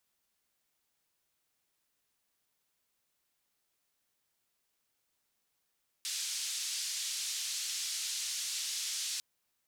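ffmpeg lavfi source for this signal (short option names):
-f lavfi -i "anoisesrc=c=white:d=3.15:r=44100:seed=1,highpass=f=4000,lowpass=f=6400,volume=-23.2dB"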